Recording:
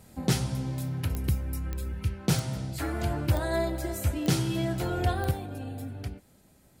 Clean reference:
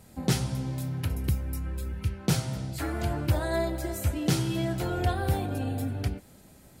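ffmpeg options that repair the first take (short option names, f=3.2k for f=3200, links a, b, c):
-af "adeclick=t=4,asetnsamples=n=441:p=0,asendcmd='5.31 volume volume 6.5dB',volume=0dB"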